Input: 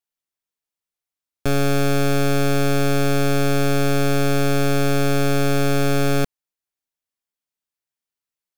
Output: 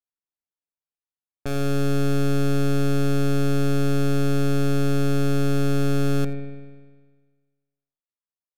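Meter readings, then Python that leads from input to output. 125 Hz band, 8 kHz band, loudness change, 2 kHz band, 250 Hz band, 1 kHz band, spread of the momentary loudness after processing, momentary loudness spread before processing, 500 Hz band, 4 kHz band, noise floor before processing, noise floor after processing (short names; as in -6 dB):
-1.0 dB, -8.0 dB, -3.0 dB, -9.0 dB, -1.5 dB, -8.0 dB, 6 LU, 2 LU, -5.0 dB, -7.5 dB, under -85 dBFS, under -85 dBFS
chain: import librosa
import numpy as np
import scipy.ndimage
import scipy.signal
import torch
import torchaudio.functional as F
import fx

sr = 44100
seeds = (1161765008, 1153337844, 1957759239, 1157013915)

p1 = fx.env_lowpass(x, sr, base_hz=1400.0, full_db=-20.0)
p2 = p1 + fx.echo_single(p1, sr, ms=85, db=-21.5, dry=0)
p3 = fx.rev_spring(p2, sr, rt60_s=1.5, pass_ms=(50,), chirp_ms=60, drr_db=8.5)
y = p3 * librosa.db_to_amplitude(-8.0)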